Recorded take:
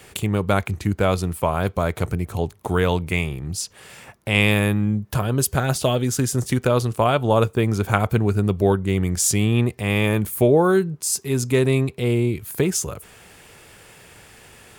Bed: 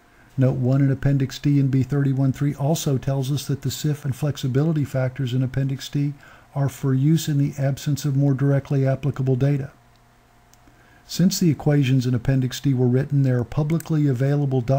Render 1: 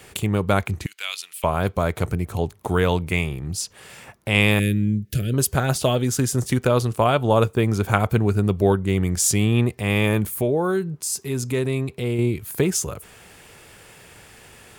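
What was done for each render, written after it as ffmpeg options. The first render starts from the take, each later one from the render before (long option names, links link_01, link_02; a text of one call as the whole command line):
ffmpeg -i in.wav -filter_complex "[0:a]asettb=1/sr,asplit=3[link_01][link_02][link_03];[link_01]atrim=end=0.864[link_04];[link_02]atrim=start=0.86:end=1.44,asetpts=PTS-STARTPTS,afade=type=in:duration=0.004:curve=qsin,afade=type=out:start_time=0.576:duration=0.004:curve=qsin,highpass=frequency=2800:width_type=q:width=1.9[link_05];[link_03]atrim=start=1.436[link_06];[link_04][link_05]acrossfade=duration=0.004:curve1=hsin:curve2=qsin[link_07];[link_07][link_06]acrossfade=duration=0.004:curve1=qsin:curve2=hsin,asettb=1/sr,asplit=3[link_08][link_09][link_10];[link_08]atrim=end=4.594[link_11];[link_09]atrim=start=4.59:end=5.34,asetpts=PTS-STARTPTS,afade=type=in:duration=0.004:curve=qsin,afade=type=out:start_time=0.746:duration=0.004:curve=qsin,asuperstop=centerf=930:order=4:qfactor=0.55[link_12];[link_10]atrim=start=5.336[link_13];[link_11][link_12]acrossfade=duration=0.004:curve1=hsin:curve2=qsin[link_14];[link_14][link_13]acrossfade=duration=0.004:curve1=qsin:curve2=hsin,asettb=1/sr,asplit=3[link_15][link_16][link_17];[link_15]atrim=end=10.274[link_18];[link_16]atrim=start=10.27:end=12.19,asetpts=PTS-STARTPTS,afade=type=in:duration=0.004:curve=qsin,afade=type=out:start_time=1.916:duration=0.004:curve=qsin,acompressor=threshold=-27dB:ratio=1.5:attack=3.2:release=140:knee=1:detection=peak[link_19];[link_17]atrim=start=12.186[link_20];[link_18][link_19]acrossfade=duration=0.004:curve1=hsin:curve2=qsin[link_21];[link_21][link_20]acrossfade=duration=0.004:curve1=qsin:curve2=hsin" out.wav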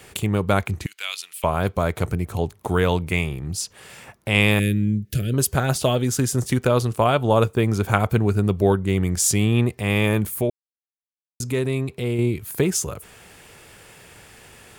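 ffmpeg -i in.wav -filter_complex "[0:a]asplit=3[link_01][link_02][link_03];[link_01]atrim=end=10.5,asetpts=PTS-STARTPTS,afade=type=out:start_time=10.496:duration=0.004:curve=hsin[link_04];[link_02]atrim=start=10.5:end=11.4,asetpts=PTS-STARTPTS,volume=0[link_05];[link_03]atrim=start=11.4,asetpts=PTS-STARTPTS,afade=type=in:duration=0.004:curve=hsin[link_06];[link_04][link_05][link_06]concat=n=3:v=0:a=1" out.wav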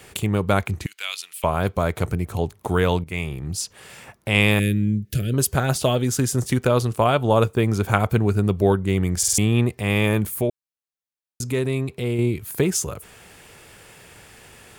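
ffmpeg -i in.wav -filter_complex "[0:a]asplit=6[link_01][link_02][link_03][link_04][link_05][link_06];[link_01]atrim=end=3.04,asetpts=PTS-STARTPTS,afade=type=out:start_time=3.036:duration=0.004:curve=hsin:silence=0.223872[link_07];[link_02]atrim=start=3.04:end=9.232,asetpts=PTS-STARTPTS,afade=type=in:duration=0.47:curve=qsin:silence=0.223872[link_08];[link_03]atrim=start=9.178:end=9.232[link_09];[link_04]atrim=start=9.178:end=9.232[link_10];[link_05]atrim=start=9.178:end=9.232[link_11];[link_06]atrim=start=9.378[link_12];[link_07][link_08]concat=n=2:v=0:a=1[link_13];[link_13][link_09]acrossfade=duration=0.004:curve1=hsin:curve2=hsin[link_14];[link_14][link_10]acrossfade=duration=0.004:curve1=hsin:curve2=hsin[link_15];[link_15][link_11]acrossfade=duration=0.004:curve1=hsin:curve2=hsin[link_16];[link_16][link_12]acrossfade=duration=0.004:curve1=hsin:curve2=hsin" out.wav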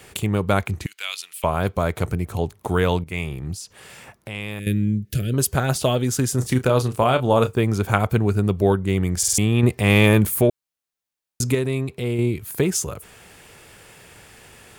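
ffmpeg -i in.wav -filter_complex "[0:a]asettb=1/sr,asplit=3[link_01][link_02][link_03];[link_01]atrim=end=3.544[link_04];[link_02]atrim=start=3.54:end=4.67,asetpts=PTS-STARTPTS,afade=type=in:duration=0.004:curve=qsin,afade=type=out:start_time=1.126:duration=0.004:curve=qsin,acompressor=threshold=-38dB:ratio=2:attack=3.2:release=140:knee=1:detection=peak[link_05];[link_03]atrim=start=4.666[link_06];[link_04][link_05]acrossfade=duration=0.004:curve1=hsin:curve2=qsin[link_07];[link_07][link_06]acrossfade=duration=0.004:curve1=qsin:curve2=hsin,asettb=1/sr,asplit=3[link_08][link_09][link_10];[link_08]atrim=end=6.364[link_11];[link_09]atrim=start=6.36:end=7.6,asetpts=PTS-STARTPTS,afade=type=in:duration=0.004:curve=qsin,afade=type=out:start_time=1.236:duration=0.004:curve=qsin,asplit=2[link_12][link_13];[link_13]adelay=31,volume=-10dB[link_14];[link_12][link_14]amix=inputs=2:normalize=0,atrim=end_sample=54684[link_15];[link_10]atrim=start=7.596[link_16];[link_11][link_15]acrossfade=duration=0.004:curve1=hsin:curve2=qsin[link_17];[link_17][link_16]acrossfade=duration=0.004:curve1=qsin:curve2=hsin,asettb=1/sr,asplit=3[link_18][link_19][link_20];[link_18]atrim=end=9.634[link_21];[link_19]atrim=start=9.63:end=11.55,asetpts=PTS-STARTPTS,afade=type=in:duration=0.004:curve=qsin,afade=type=out:start_time=1.916:duration=0.004:curve=qsin,acontrast=45[link_22];[link_20]atrim=start=11.546[link_23];[link_21][link_22]acrossfade=duration=0.004:curve1=hsin:curve2=qsin[link_24];[link_24][link_23]acrossfade=duration=0.004:curve1=qsin:curve2=hsin" out.wav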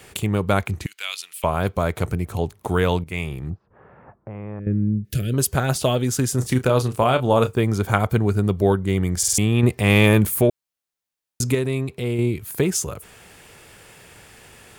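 ffmpeg -i in.wav -filter_complex "[0:a]asplit=3[link_01][link_02][link_03];[link_01]afade=type=out:start_time=3.49:duration=0.02[link_04];[link_02]lowpass=frequency=1300:width=0.5412,lowpass=frequency=1300:width=1.3066,afade=type=in:start_time=3.49:duration=0.02,afade=type=out:start_time=5.03:duration=0.02[link_05];[link_03]afade=type=in:start_time=5.03:duration=0.02[link_06];[link_04][link_05][link_06]amix=inputs=3:normalize=0,asettb=1/sr,asplit=3[link_07][link_08][link_09];[link_07]atrim=end=7.604[link_10];[link_08]atrim=start=7.6:end=9.25,asetpts=PTS-STARTPTS,afade=type=in:duration=0.004:curve=qsin,afade=type=out:start_time=1.646:duration=0.004:curve=qsin,bandreject=frequency=2600:width=12[link_11];[link_09]atrim=start=9.246[link_12];[link_10][link_11]acrossfade=duration=0.004:curve1=hsin:curve2=qsin[link_13];[link_13][link_12]acrossfade=duration=0.004:curve1=qsin:curve2=hsin" out.wav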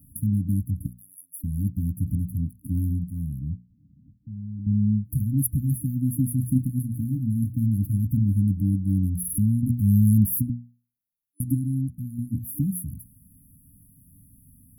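ffmpeg -i in.wav -af "afftfilt=real='re*(1-between(b*sr/4096,300,10000))':imag='im*(1-between(b*sr/4096,300,10000))':win_size=4096:overlap=0.75,bandreject=frequency=60:width_type=h:width=6,bandreject=frequency=120:width_type=h:width=6,bandreject=frequency=180:width_type=h:width=6,bandreject=frequency=240:width_type=h:width=6" out.wav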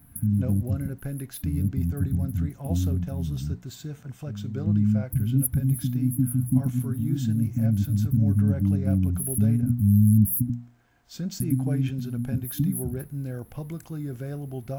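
ffmpeg -i in.wav -i bed.wav -filter_complex "[1:a]volume=-13.5dB[link_01];[0:a][link_01]amix=inputs=2:normalize=0" out.wav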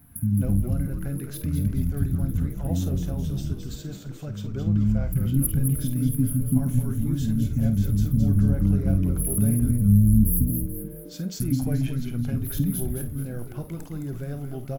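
ffmpeg -i in.wav -filter_complex "[0:a]asplit=2[link_01][link_02];[link_02]adelay=50,volume=-11.5dB[link_03];[link_01][link_03]amix=inputs=2:normalize=0,asplit=2[link_04][link_05];[link_05]asplit=5[link_06][link_07][link_08][link_09][link_10];[link_06]adelay=215,afreqshift=-140,volume=-6dB[link_11];[link_07]adelay=430,afreqshift=-280,volume=-13.5dB[link_12];[link_08]adelay=645,afreqshift=-420,volume=-21.1dB[link_13];[link_09]adelay=860,afreqshift=-560,volume=-28.6dB[link_14];[link_10]adelay=1075,afreqshift=-700,volume=-36.1dB[link_15];[link_11][link_12][link_13][link_14][link_15]amix=inputs=5:normalize=0[link_16];[link_04][link_16]amix=inputs=2:normalize=0" out.wav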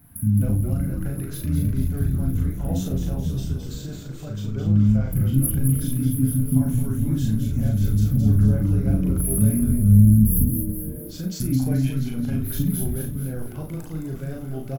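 ffmpeg -i in.wav -filter_complex "[0:a]asplit=2[link_01][link_02];[link_02]adelay=38,volume=-2dB[link_03];[link_01][link_03]amix=inputs=2:normalize=0,aecho=1:1:465:0.188" out.wav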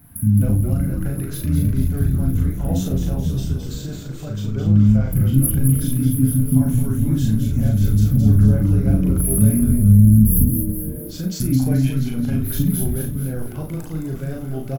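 ffmpeg -i in.wav -af "volume=4dB,alimiter=limit=-3dB:level=0:latency=1" out.wav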